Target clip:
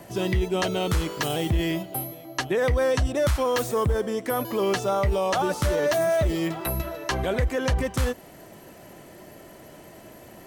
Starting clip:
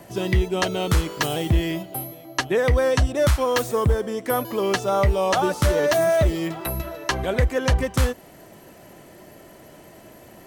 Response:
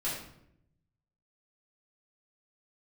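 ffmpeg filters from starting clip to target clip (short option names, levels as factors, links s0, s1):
-af "alimiter=limit=0.15:level=0:latency=1:release=15"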